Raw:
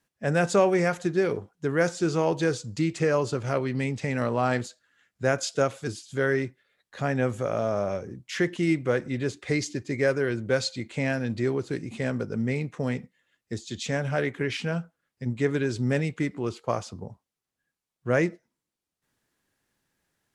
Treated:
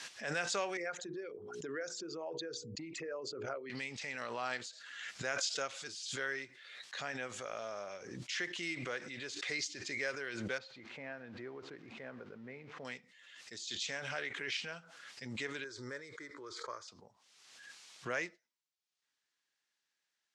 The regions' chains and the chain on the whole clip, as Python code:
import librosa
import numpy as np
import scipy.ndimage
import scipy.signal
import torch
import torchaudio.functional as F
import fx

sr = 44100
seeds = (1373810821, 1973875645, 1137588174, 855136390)

y = fx.chain(x, sr, fx.envelope_sharpen(power=2.0),
    fx.hum_notches(base_hz=60, count=8),
    fx.band_squash(depth_pct=100), at=(0.77, 3.7))
y = fx.chain(y, sr, fx.crossing_spikes(level_db=-32.0),
    fx.lowpass(hz=1200.0, slope=12),
    fx.echo_single(ms=122, db=-22.0), at=(10.58, 12.85))
y = fx.chain(y, sr, fx.lowpass(hz=4000.0, slope=6),
    fx.fixed_phaser(hz=740.0, stages=6), at=(15.64, 16.88))
y = scipy.signal.sosfilt(scipy.signal.bessel(4, 4100.0, 'lowpass', norm='mag', fs=sr, output='sos'), y)
y = np.diff(y, prepend=0.0)
y = fx.pre_swell(y, sr, db_per_s=38.0)
y = y * librosa.db_to_amplitude(4.5)